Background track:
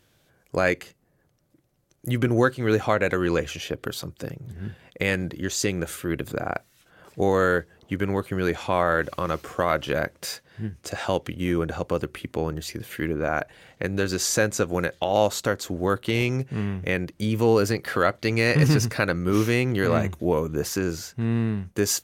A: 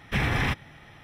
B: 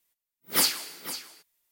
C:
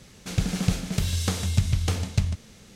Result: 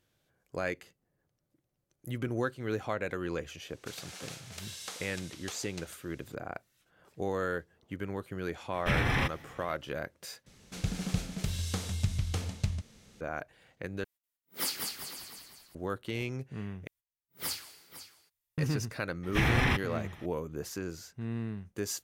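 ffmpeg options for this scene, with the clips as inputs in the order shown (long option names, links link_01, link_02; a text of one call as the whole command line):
ffmpeg -i bed.wav -i cue0.wav -i cue1.wav -i cue2.wav -filter_complex "[3:a]asplit=2[link_01][link_02];[1:a]asplit=2[link_03][link_04];[2:a]asplit=2[link_05][link_06];[0:a]volume=-12dB[link_07];[link_01]highpass=680[link_08];[link_05]asplit=7[link_09][link_10][link_11][link_12][link_13][link_14][link_15];[link_10]adelay=196,afreqshift=-55,volume=-4dB[link_16];[link_11]adelay=392,afreqshift=-110,volume=-10.4dB[link_17];[link_12]adelay=588,afreqshift=-165,volume=-16.8dB[link_18];[link_13]adelay=784,afreqshift=-220,volume=-23.1dB[link_19];[link_14]adelay=980,afreqshift=-275,volume=-29.5dB[link_20];[link_15]adelay=1176,afreqshift=-330,volume=-35.9dB[link_21];[link_09][link_16][link_17][link_18][link_19][link_20][link_21]amix=inputs=7:normalize=0[link_22];[link_06]lowshelf=frequency=150:width_type=q:width=1.5:gain=12[link_23];[link_07]asplit=4[link_24][link_25][link_26][link_27];[link_24]atrim=end=10.464[link_28];[link_02]atrim=end=2.75,asetpts=PTS-STARTPTS,volume=-8dB[link_29];[link_25]atrim=start=13.206:end=14.044[link_30];[link_22]atrim=end=1.71,asetpts=PTS-STARTPTS,volume=-10.5dB[link_31];[link_26]atrim=start=15.746:end=16.874[link_32];[link_23]atrim=end=1.71,asetpts=PTS-STARTPTS,volume=-13dB[link_33];[link_27]atrim=start=18.576[link_34];[link_08]atrim=end=2.75,asetpts=PTS-STARTPTS,volume=-10dB,afade=type=in:duration=0.004:curve=hsin,afade=type=out:start_time=2.746:duration=0.004:curve=hsin,adelay=3600[link_35];[link_03]atrim=end=1.03,asetpts=PTS-STARTPTS,volume=-3dB,afade=type=in:duration=0.004:curve=hsin,afade=type=out:start_time=1.026:duration=0.004:curve=hsin,adelay=385434S[link_36];[link_04]atrim=end=1.03,asetpts=PTS-STARTPTS,volume=-1.5dB,afade=type=in:duration=0.004:curve=hsin,afade=type=out:start_time=1.026:duration=0.004:curve=hsin,adelay=19230[link_37];[link_28][link_29]acrossfade=duration=0.004:curve1=hsin:curve2=hsin[link_38];[link_38][link_30]acrossfade=duration=0.004:curve1=hsin:curve2=hsin[link_39];[link_39][link_31]acrossfade=duration=0.004:curve1=hsin:curve2=hsin[link_40];[link_40][link_32]acrossfade=duration=0.004:curve1=hsin:curve2=hsin[link_41];[link_41][link_33]acrossfade=duration=0.004:curve1=hsin:curve2=hsin[link_42];[link_42][link_34]acrossfade=duration=0.004:curve1=hsin:curve2=hsin[link_43];[link_43][link_35][link_36][link_37]amix=inputs=4:normalize=0" out.wav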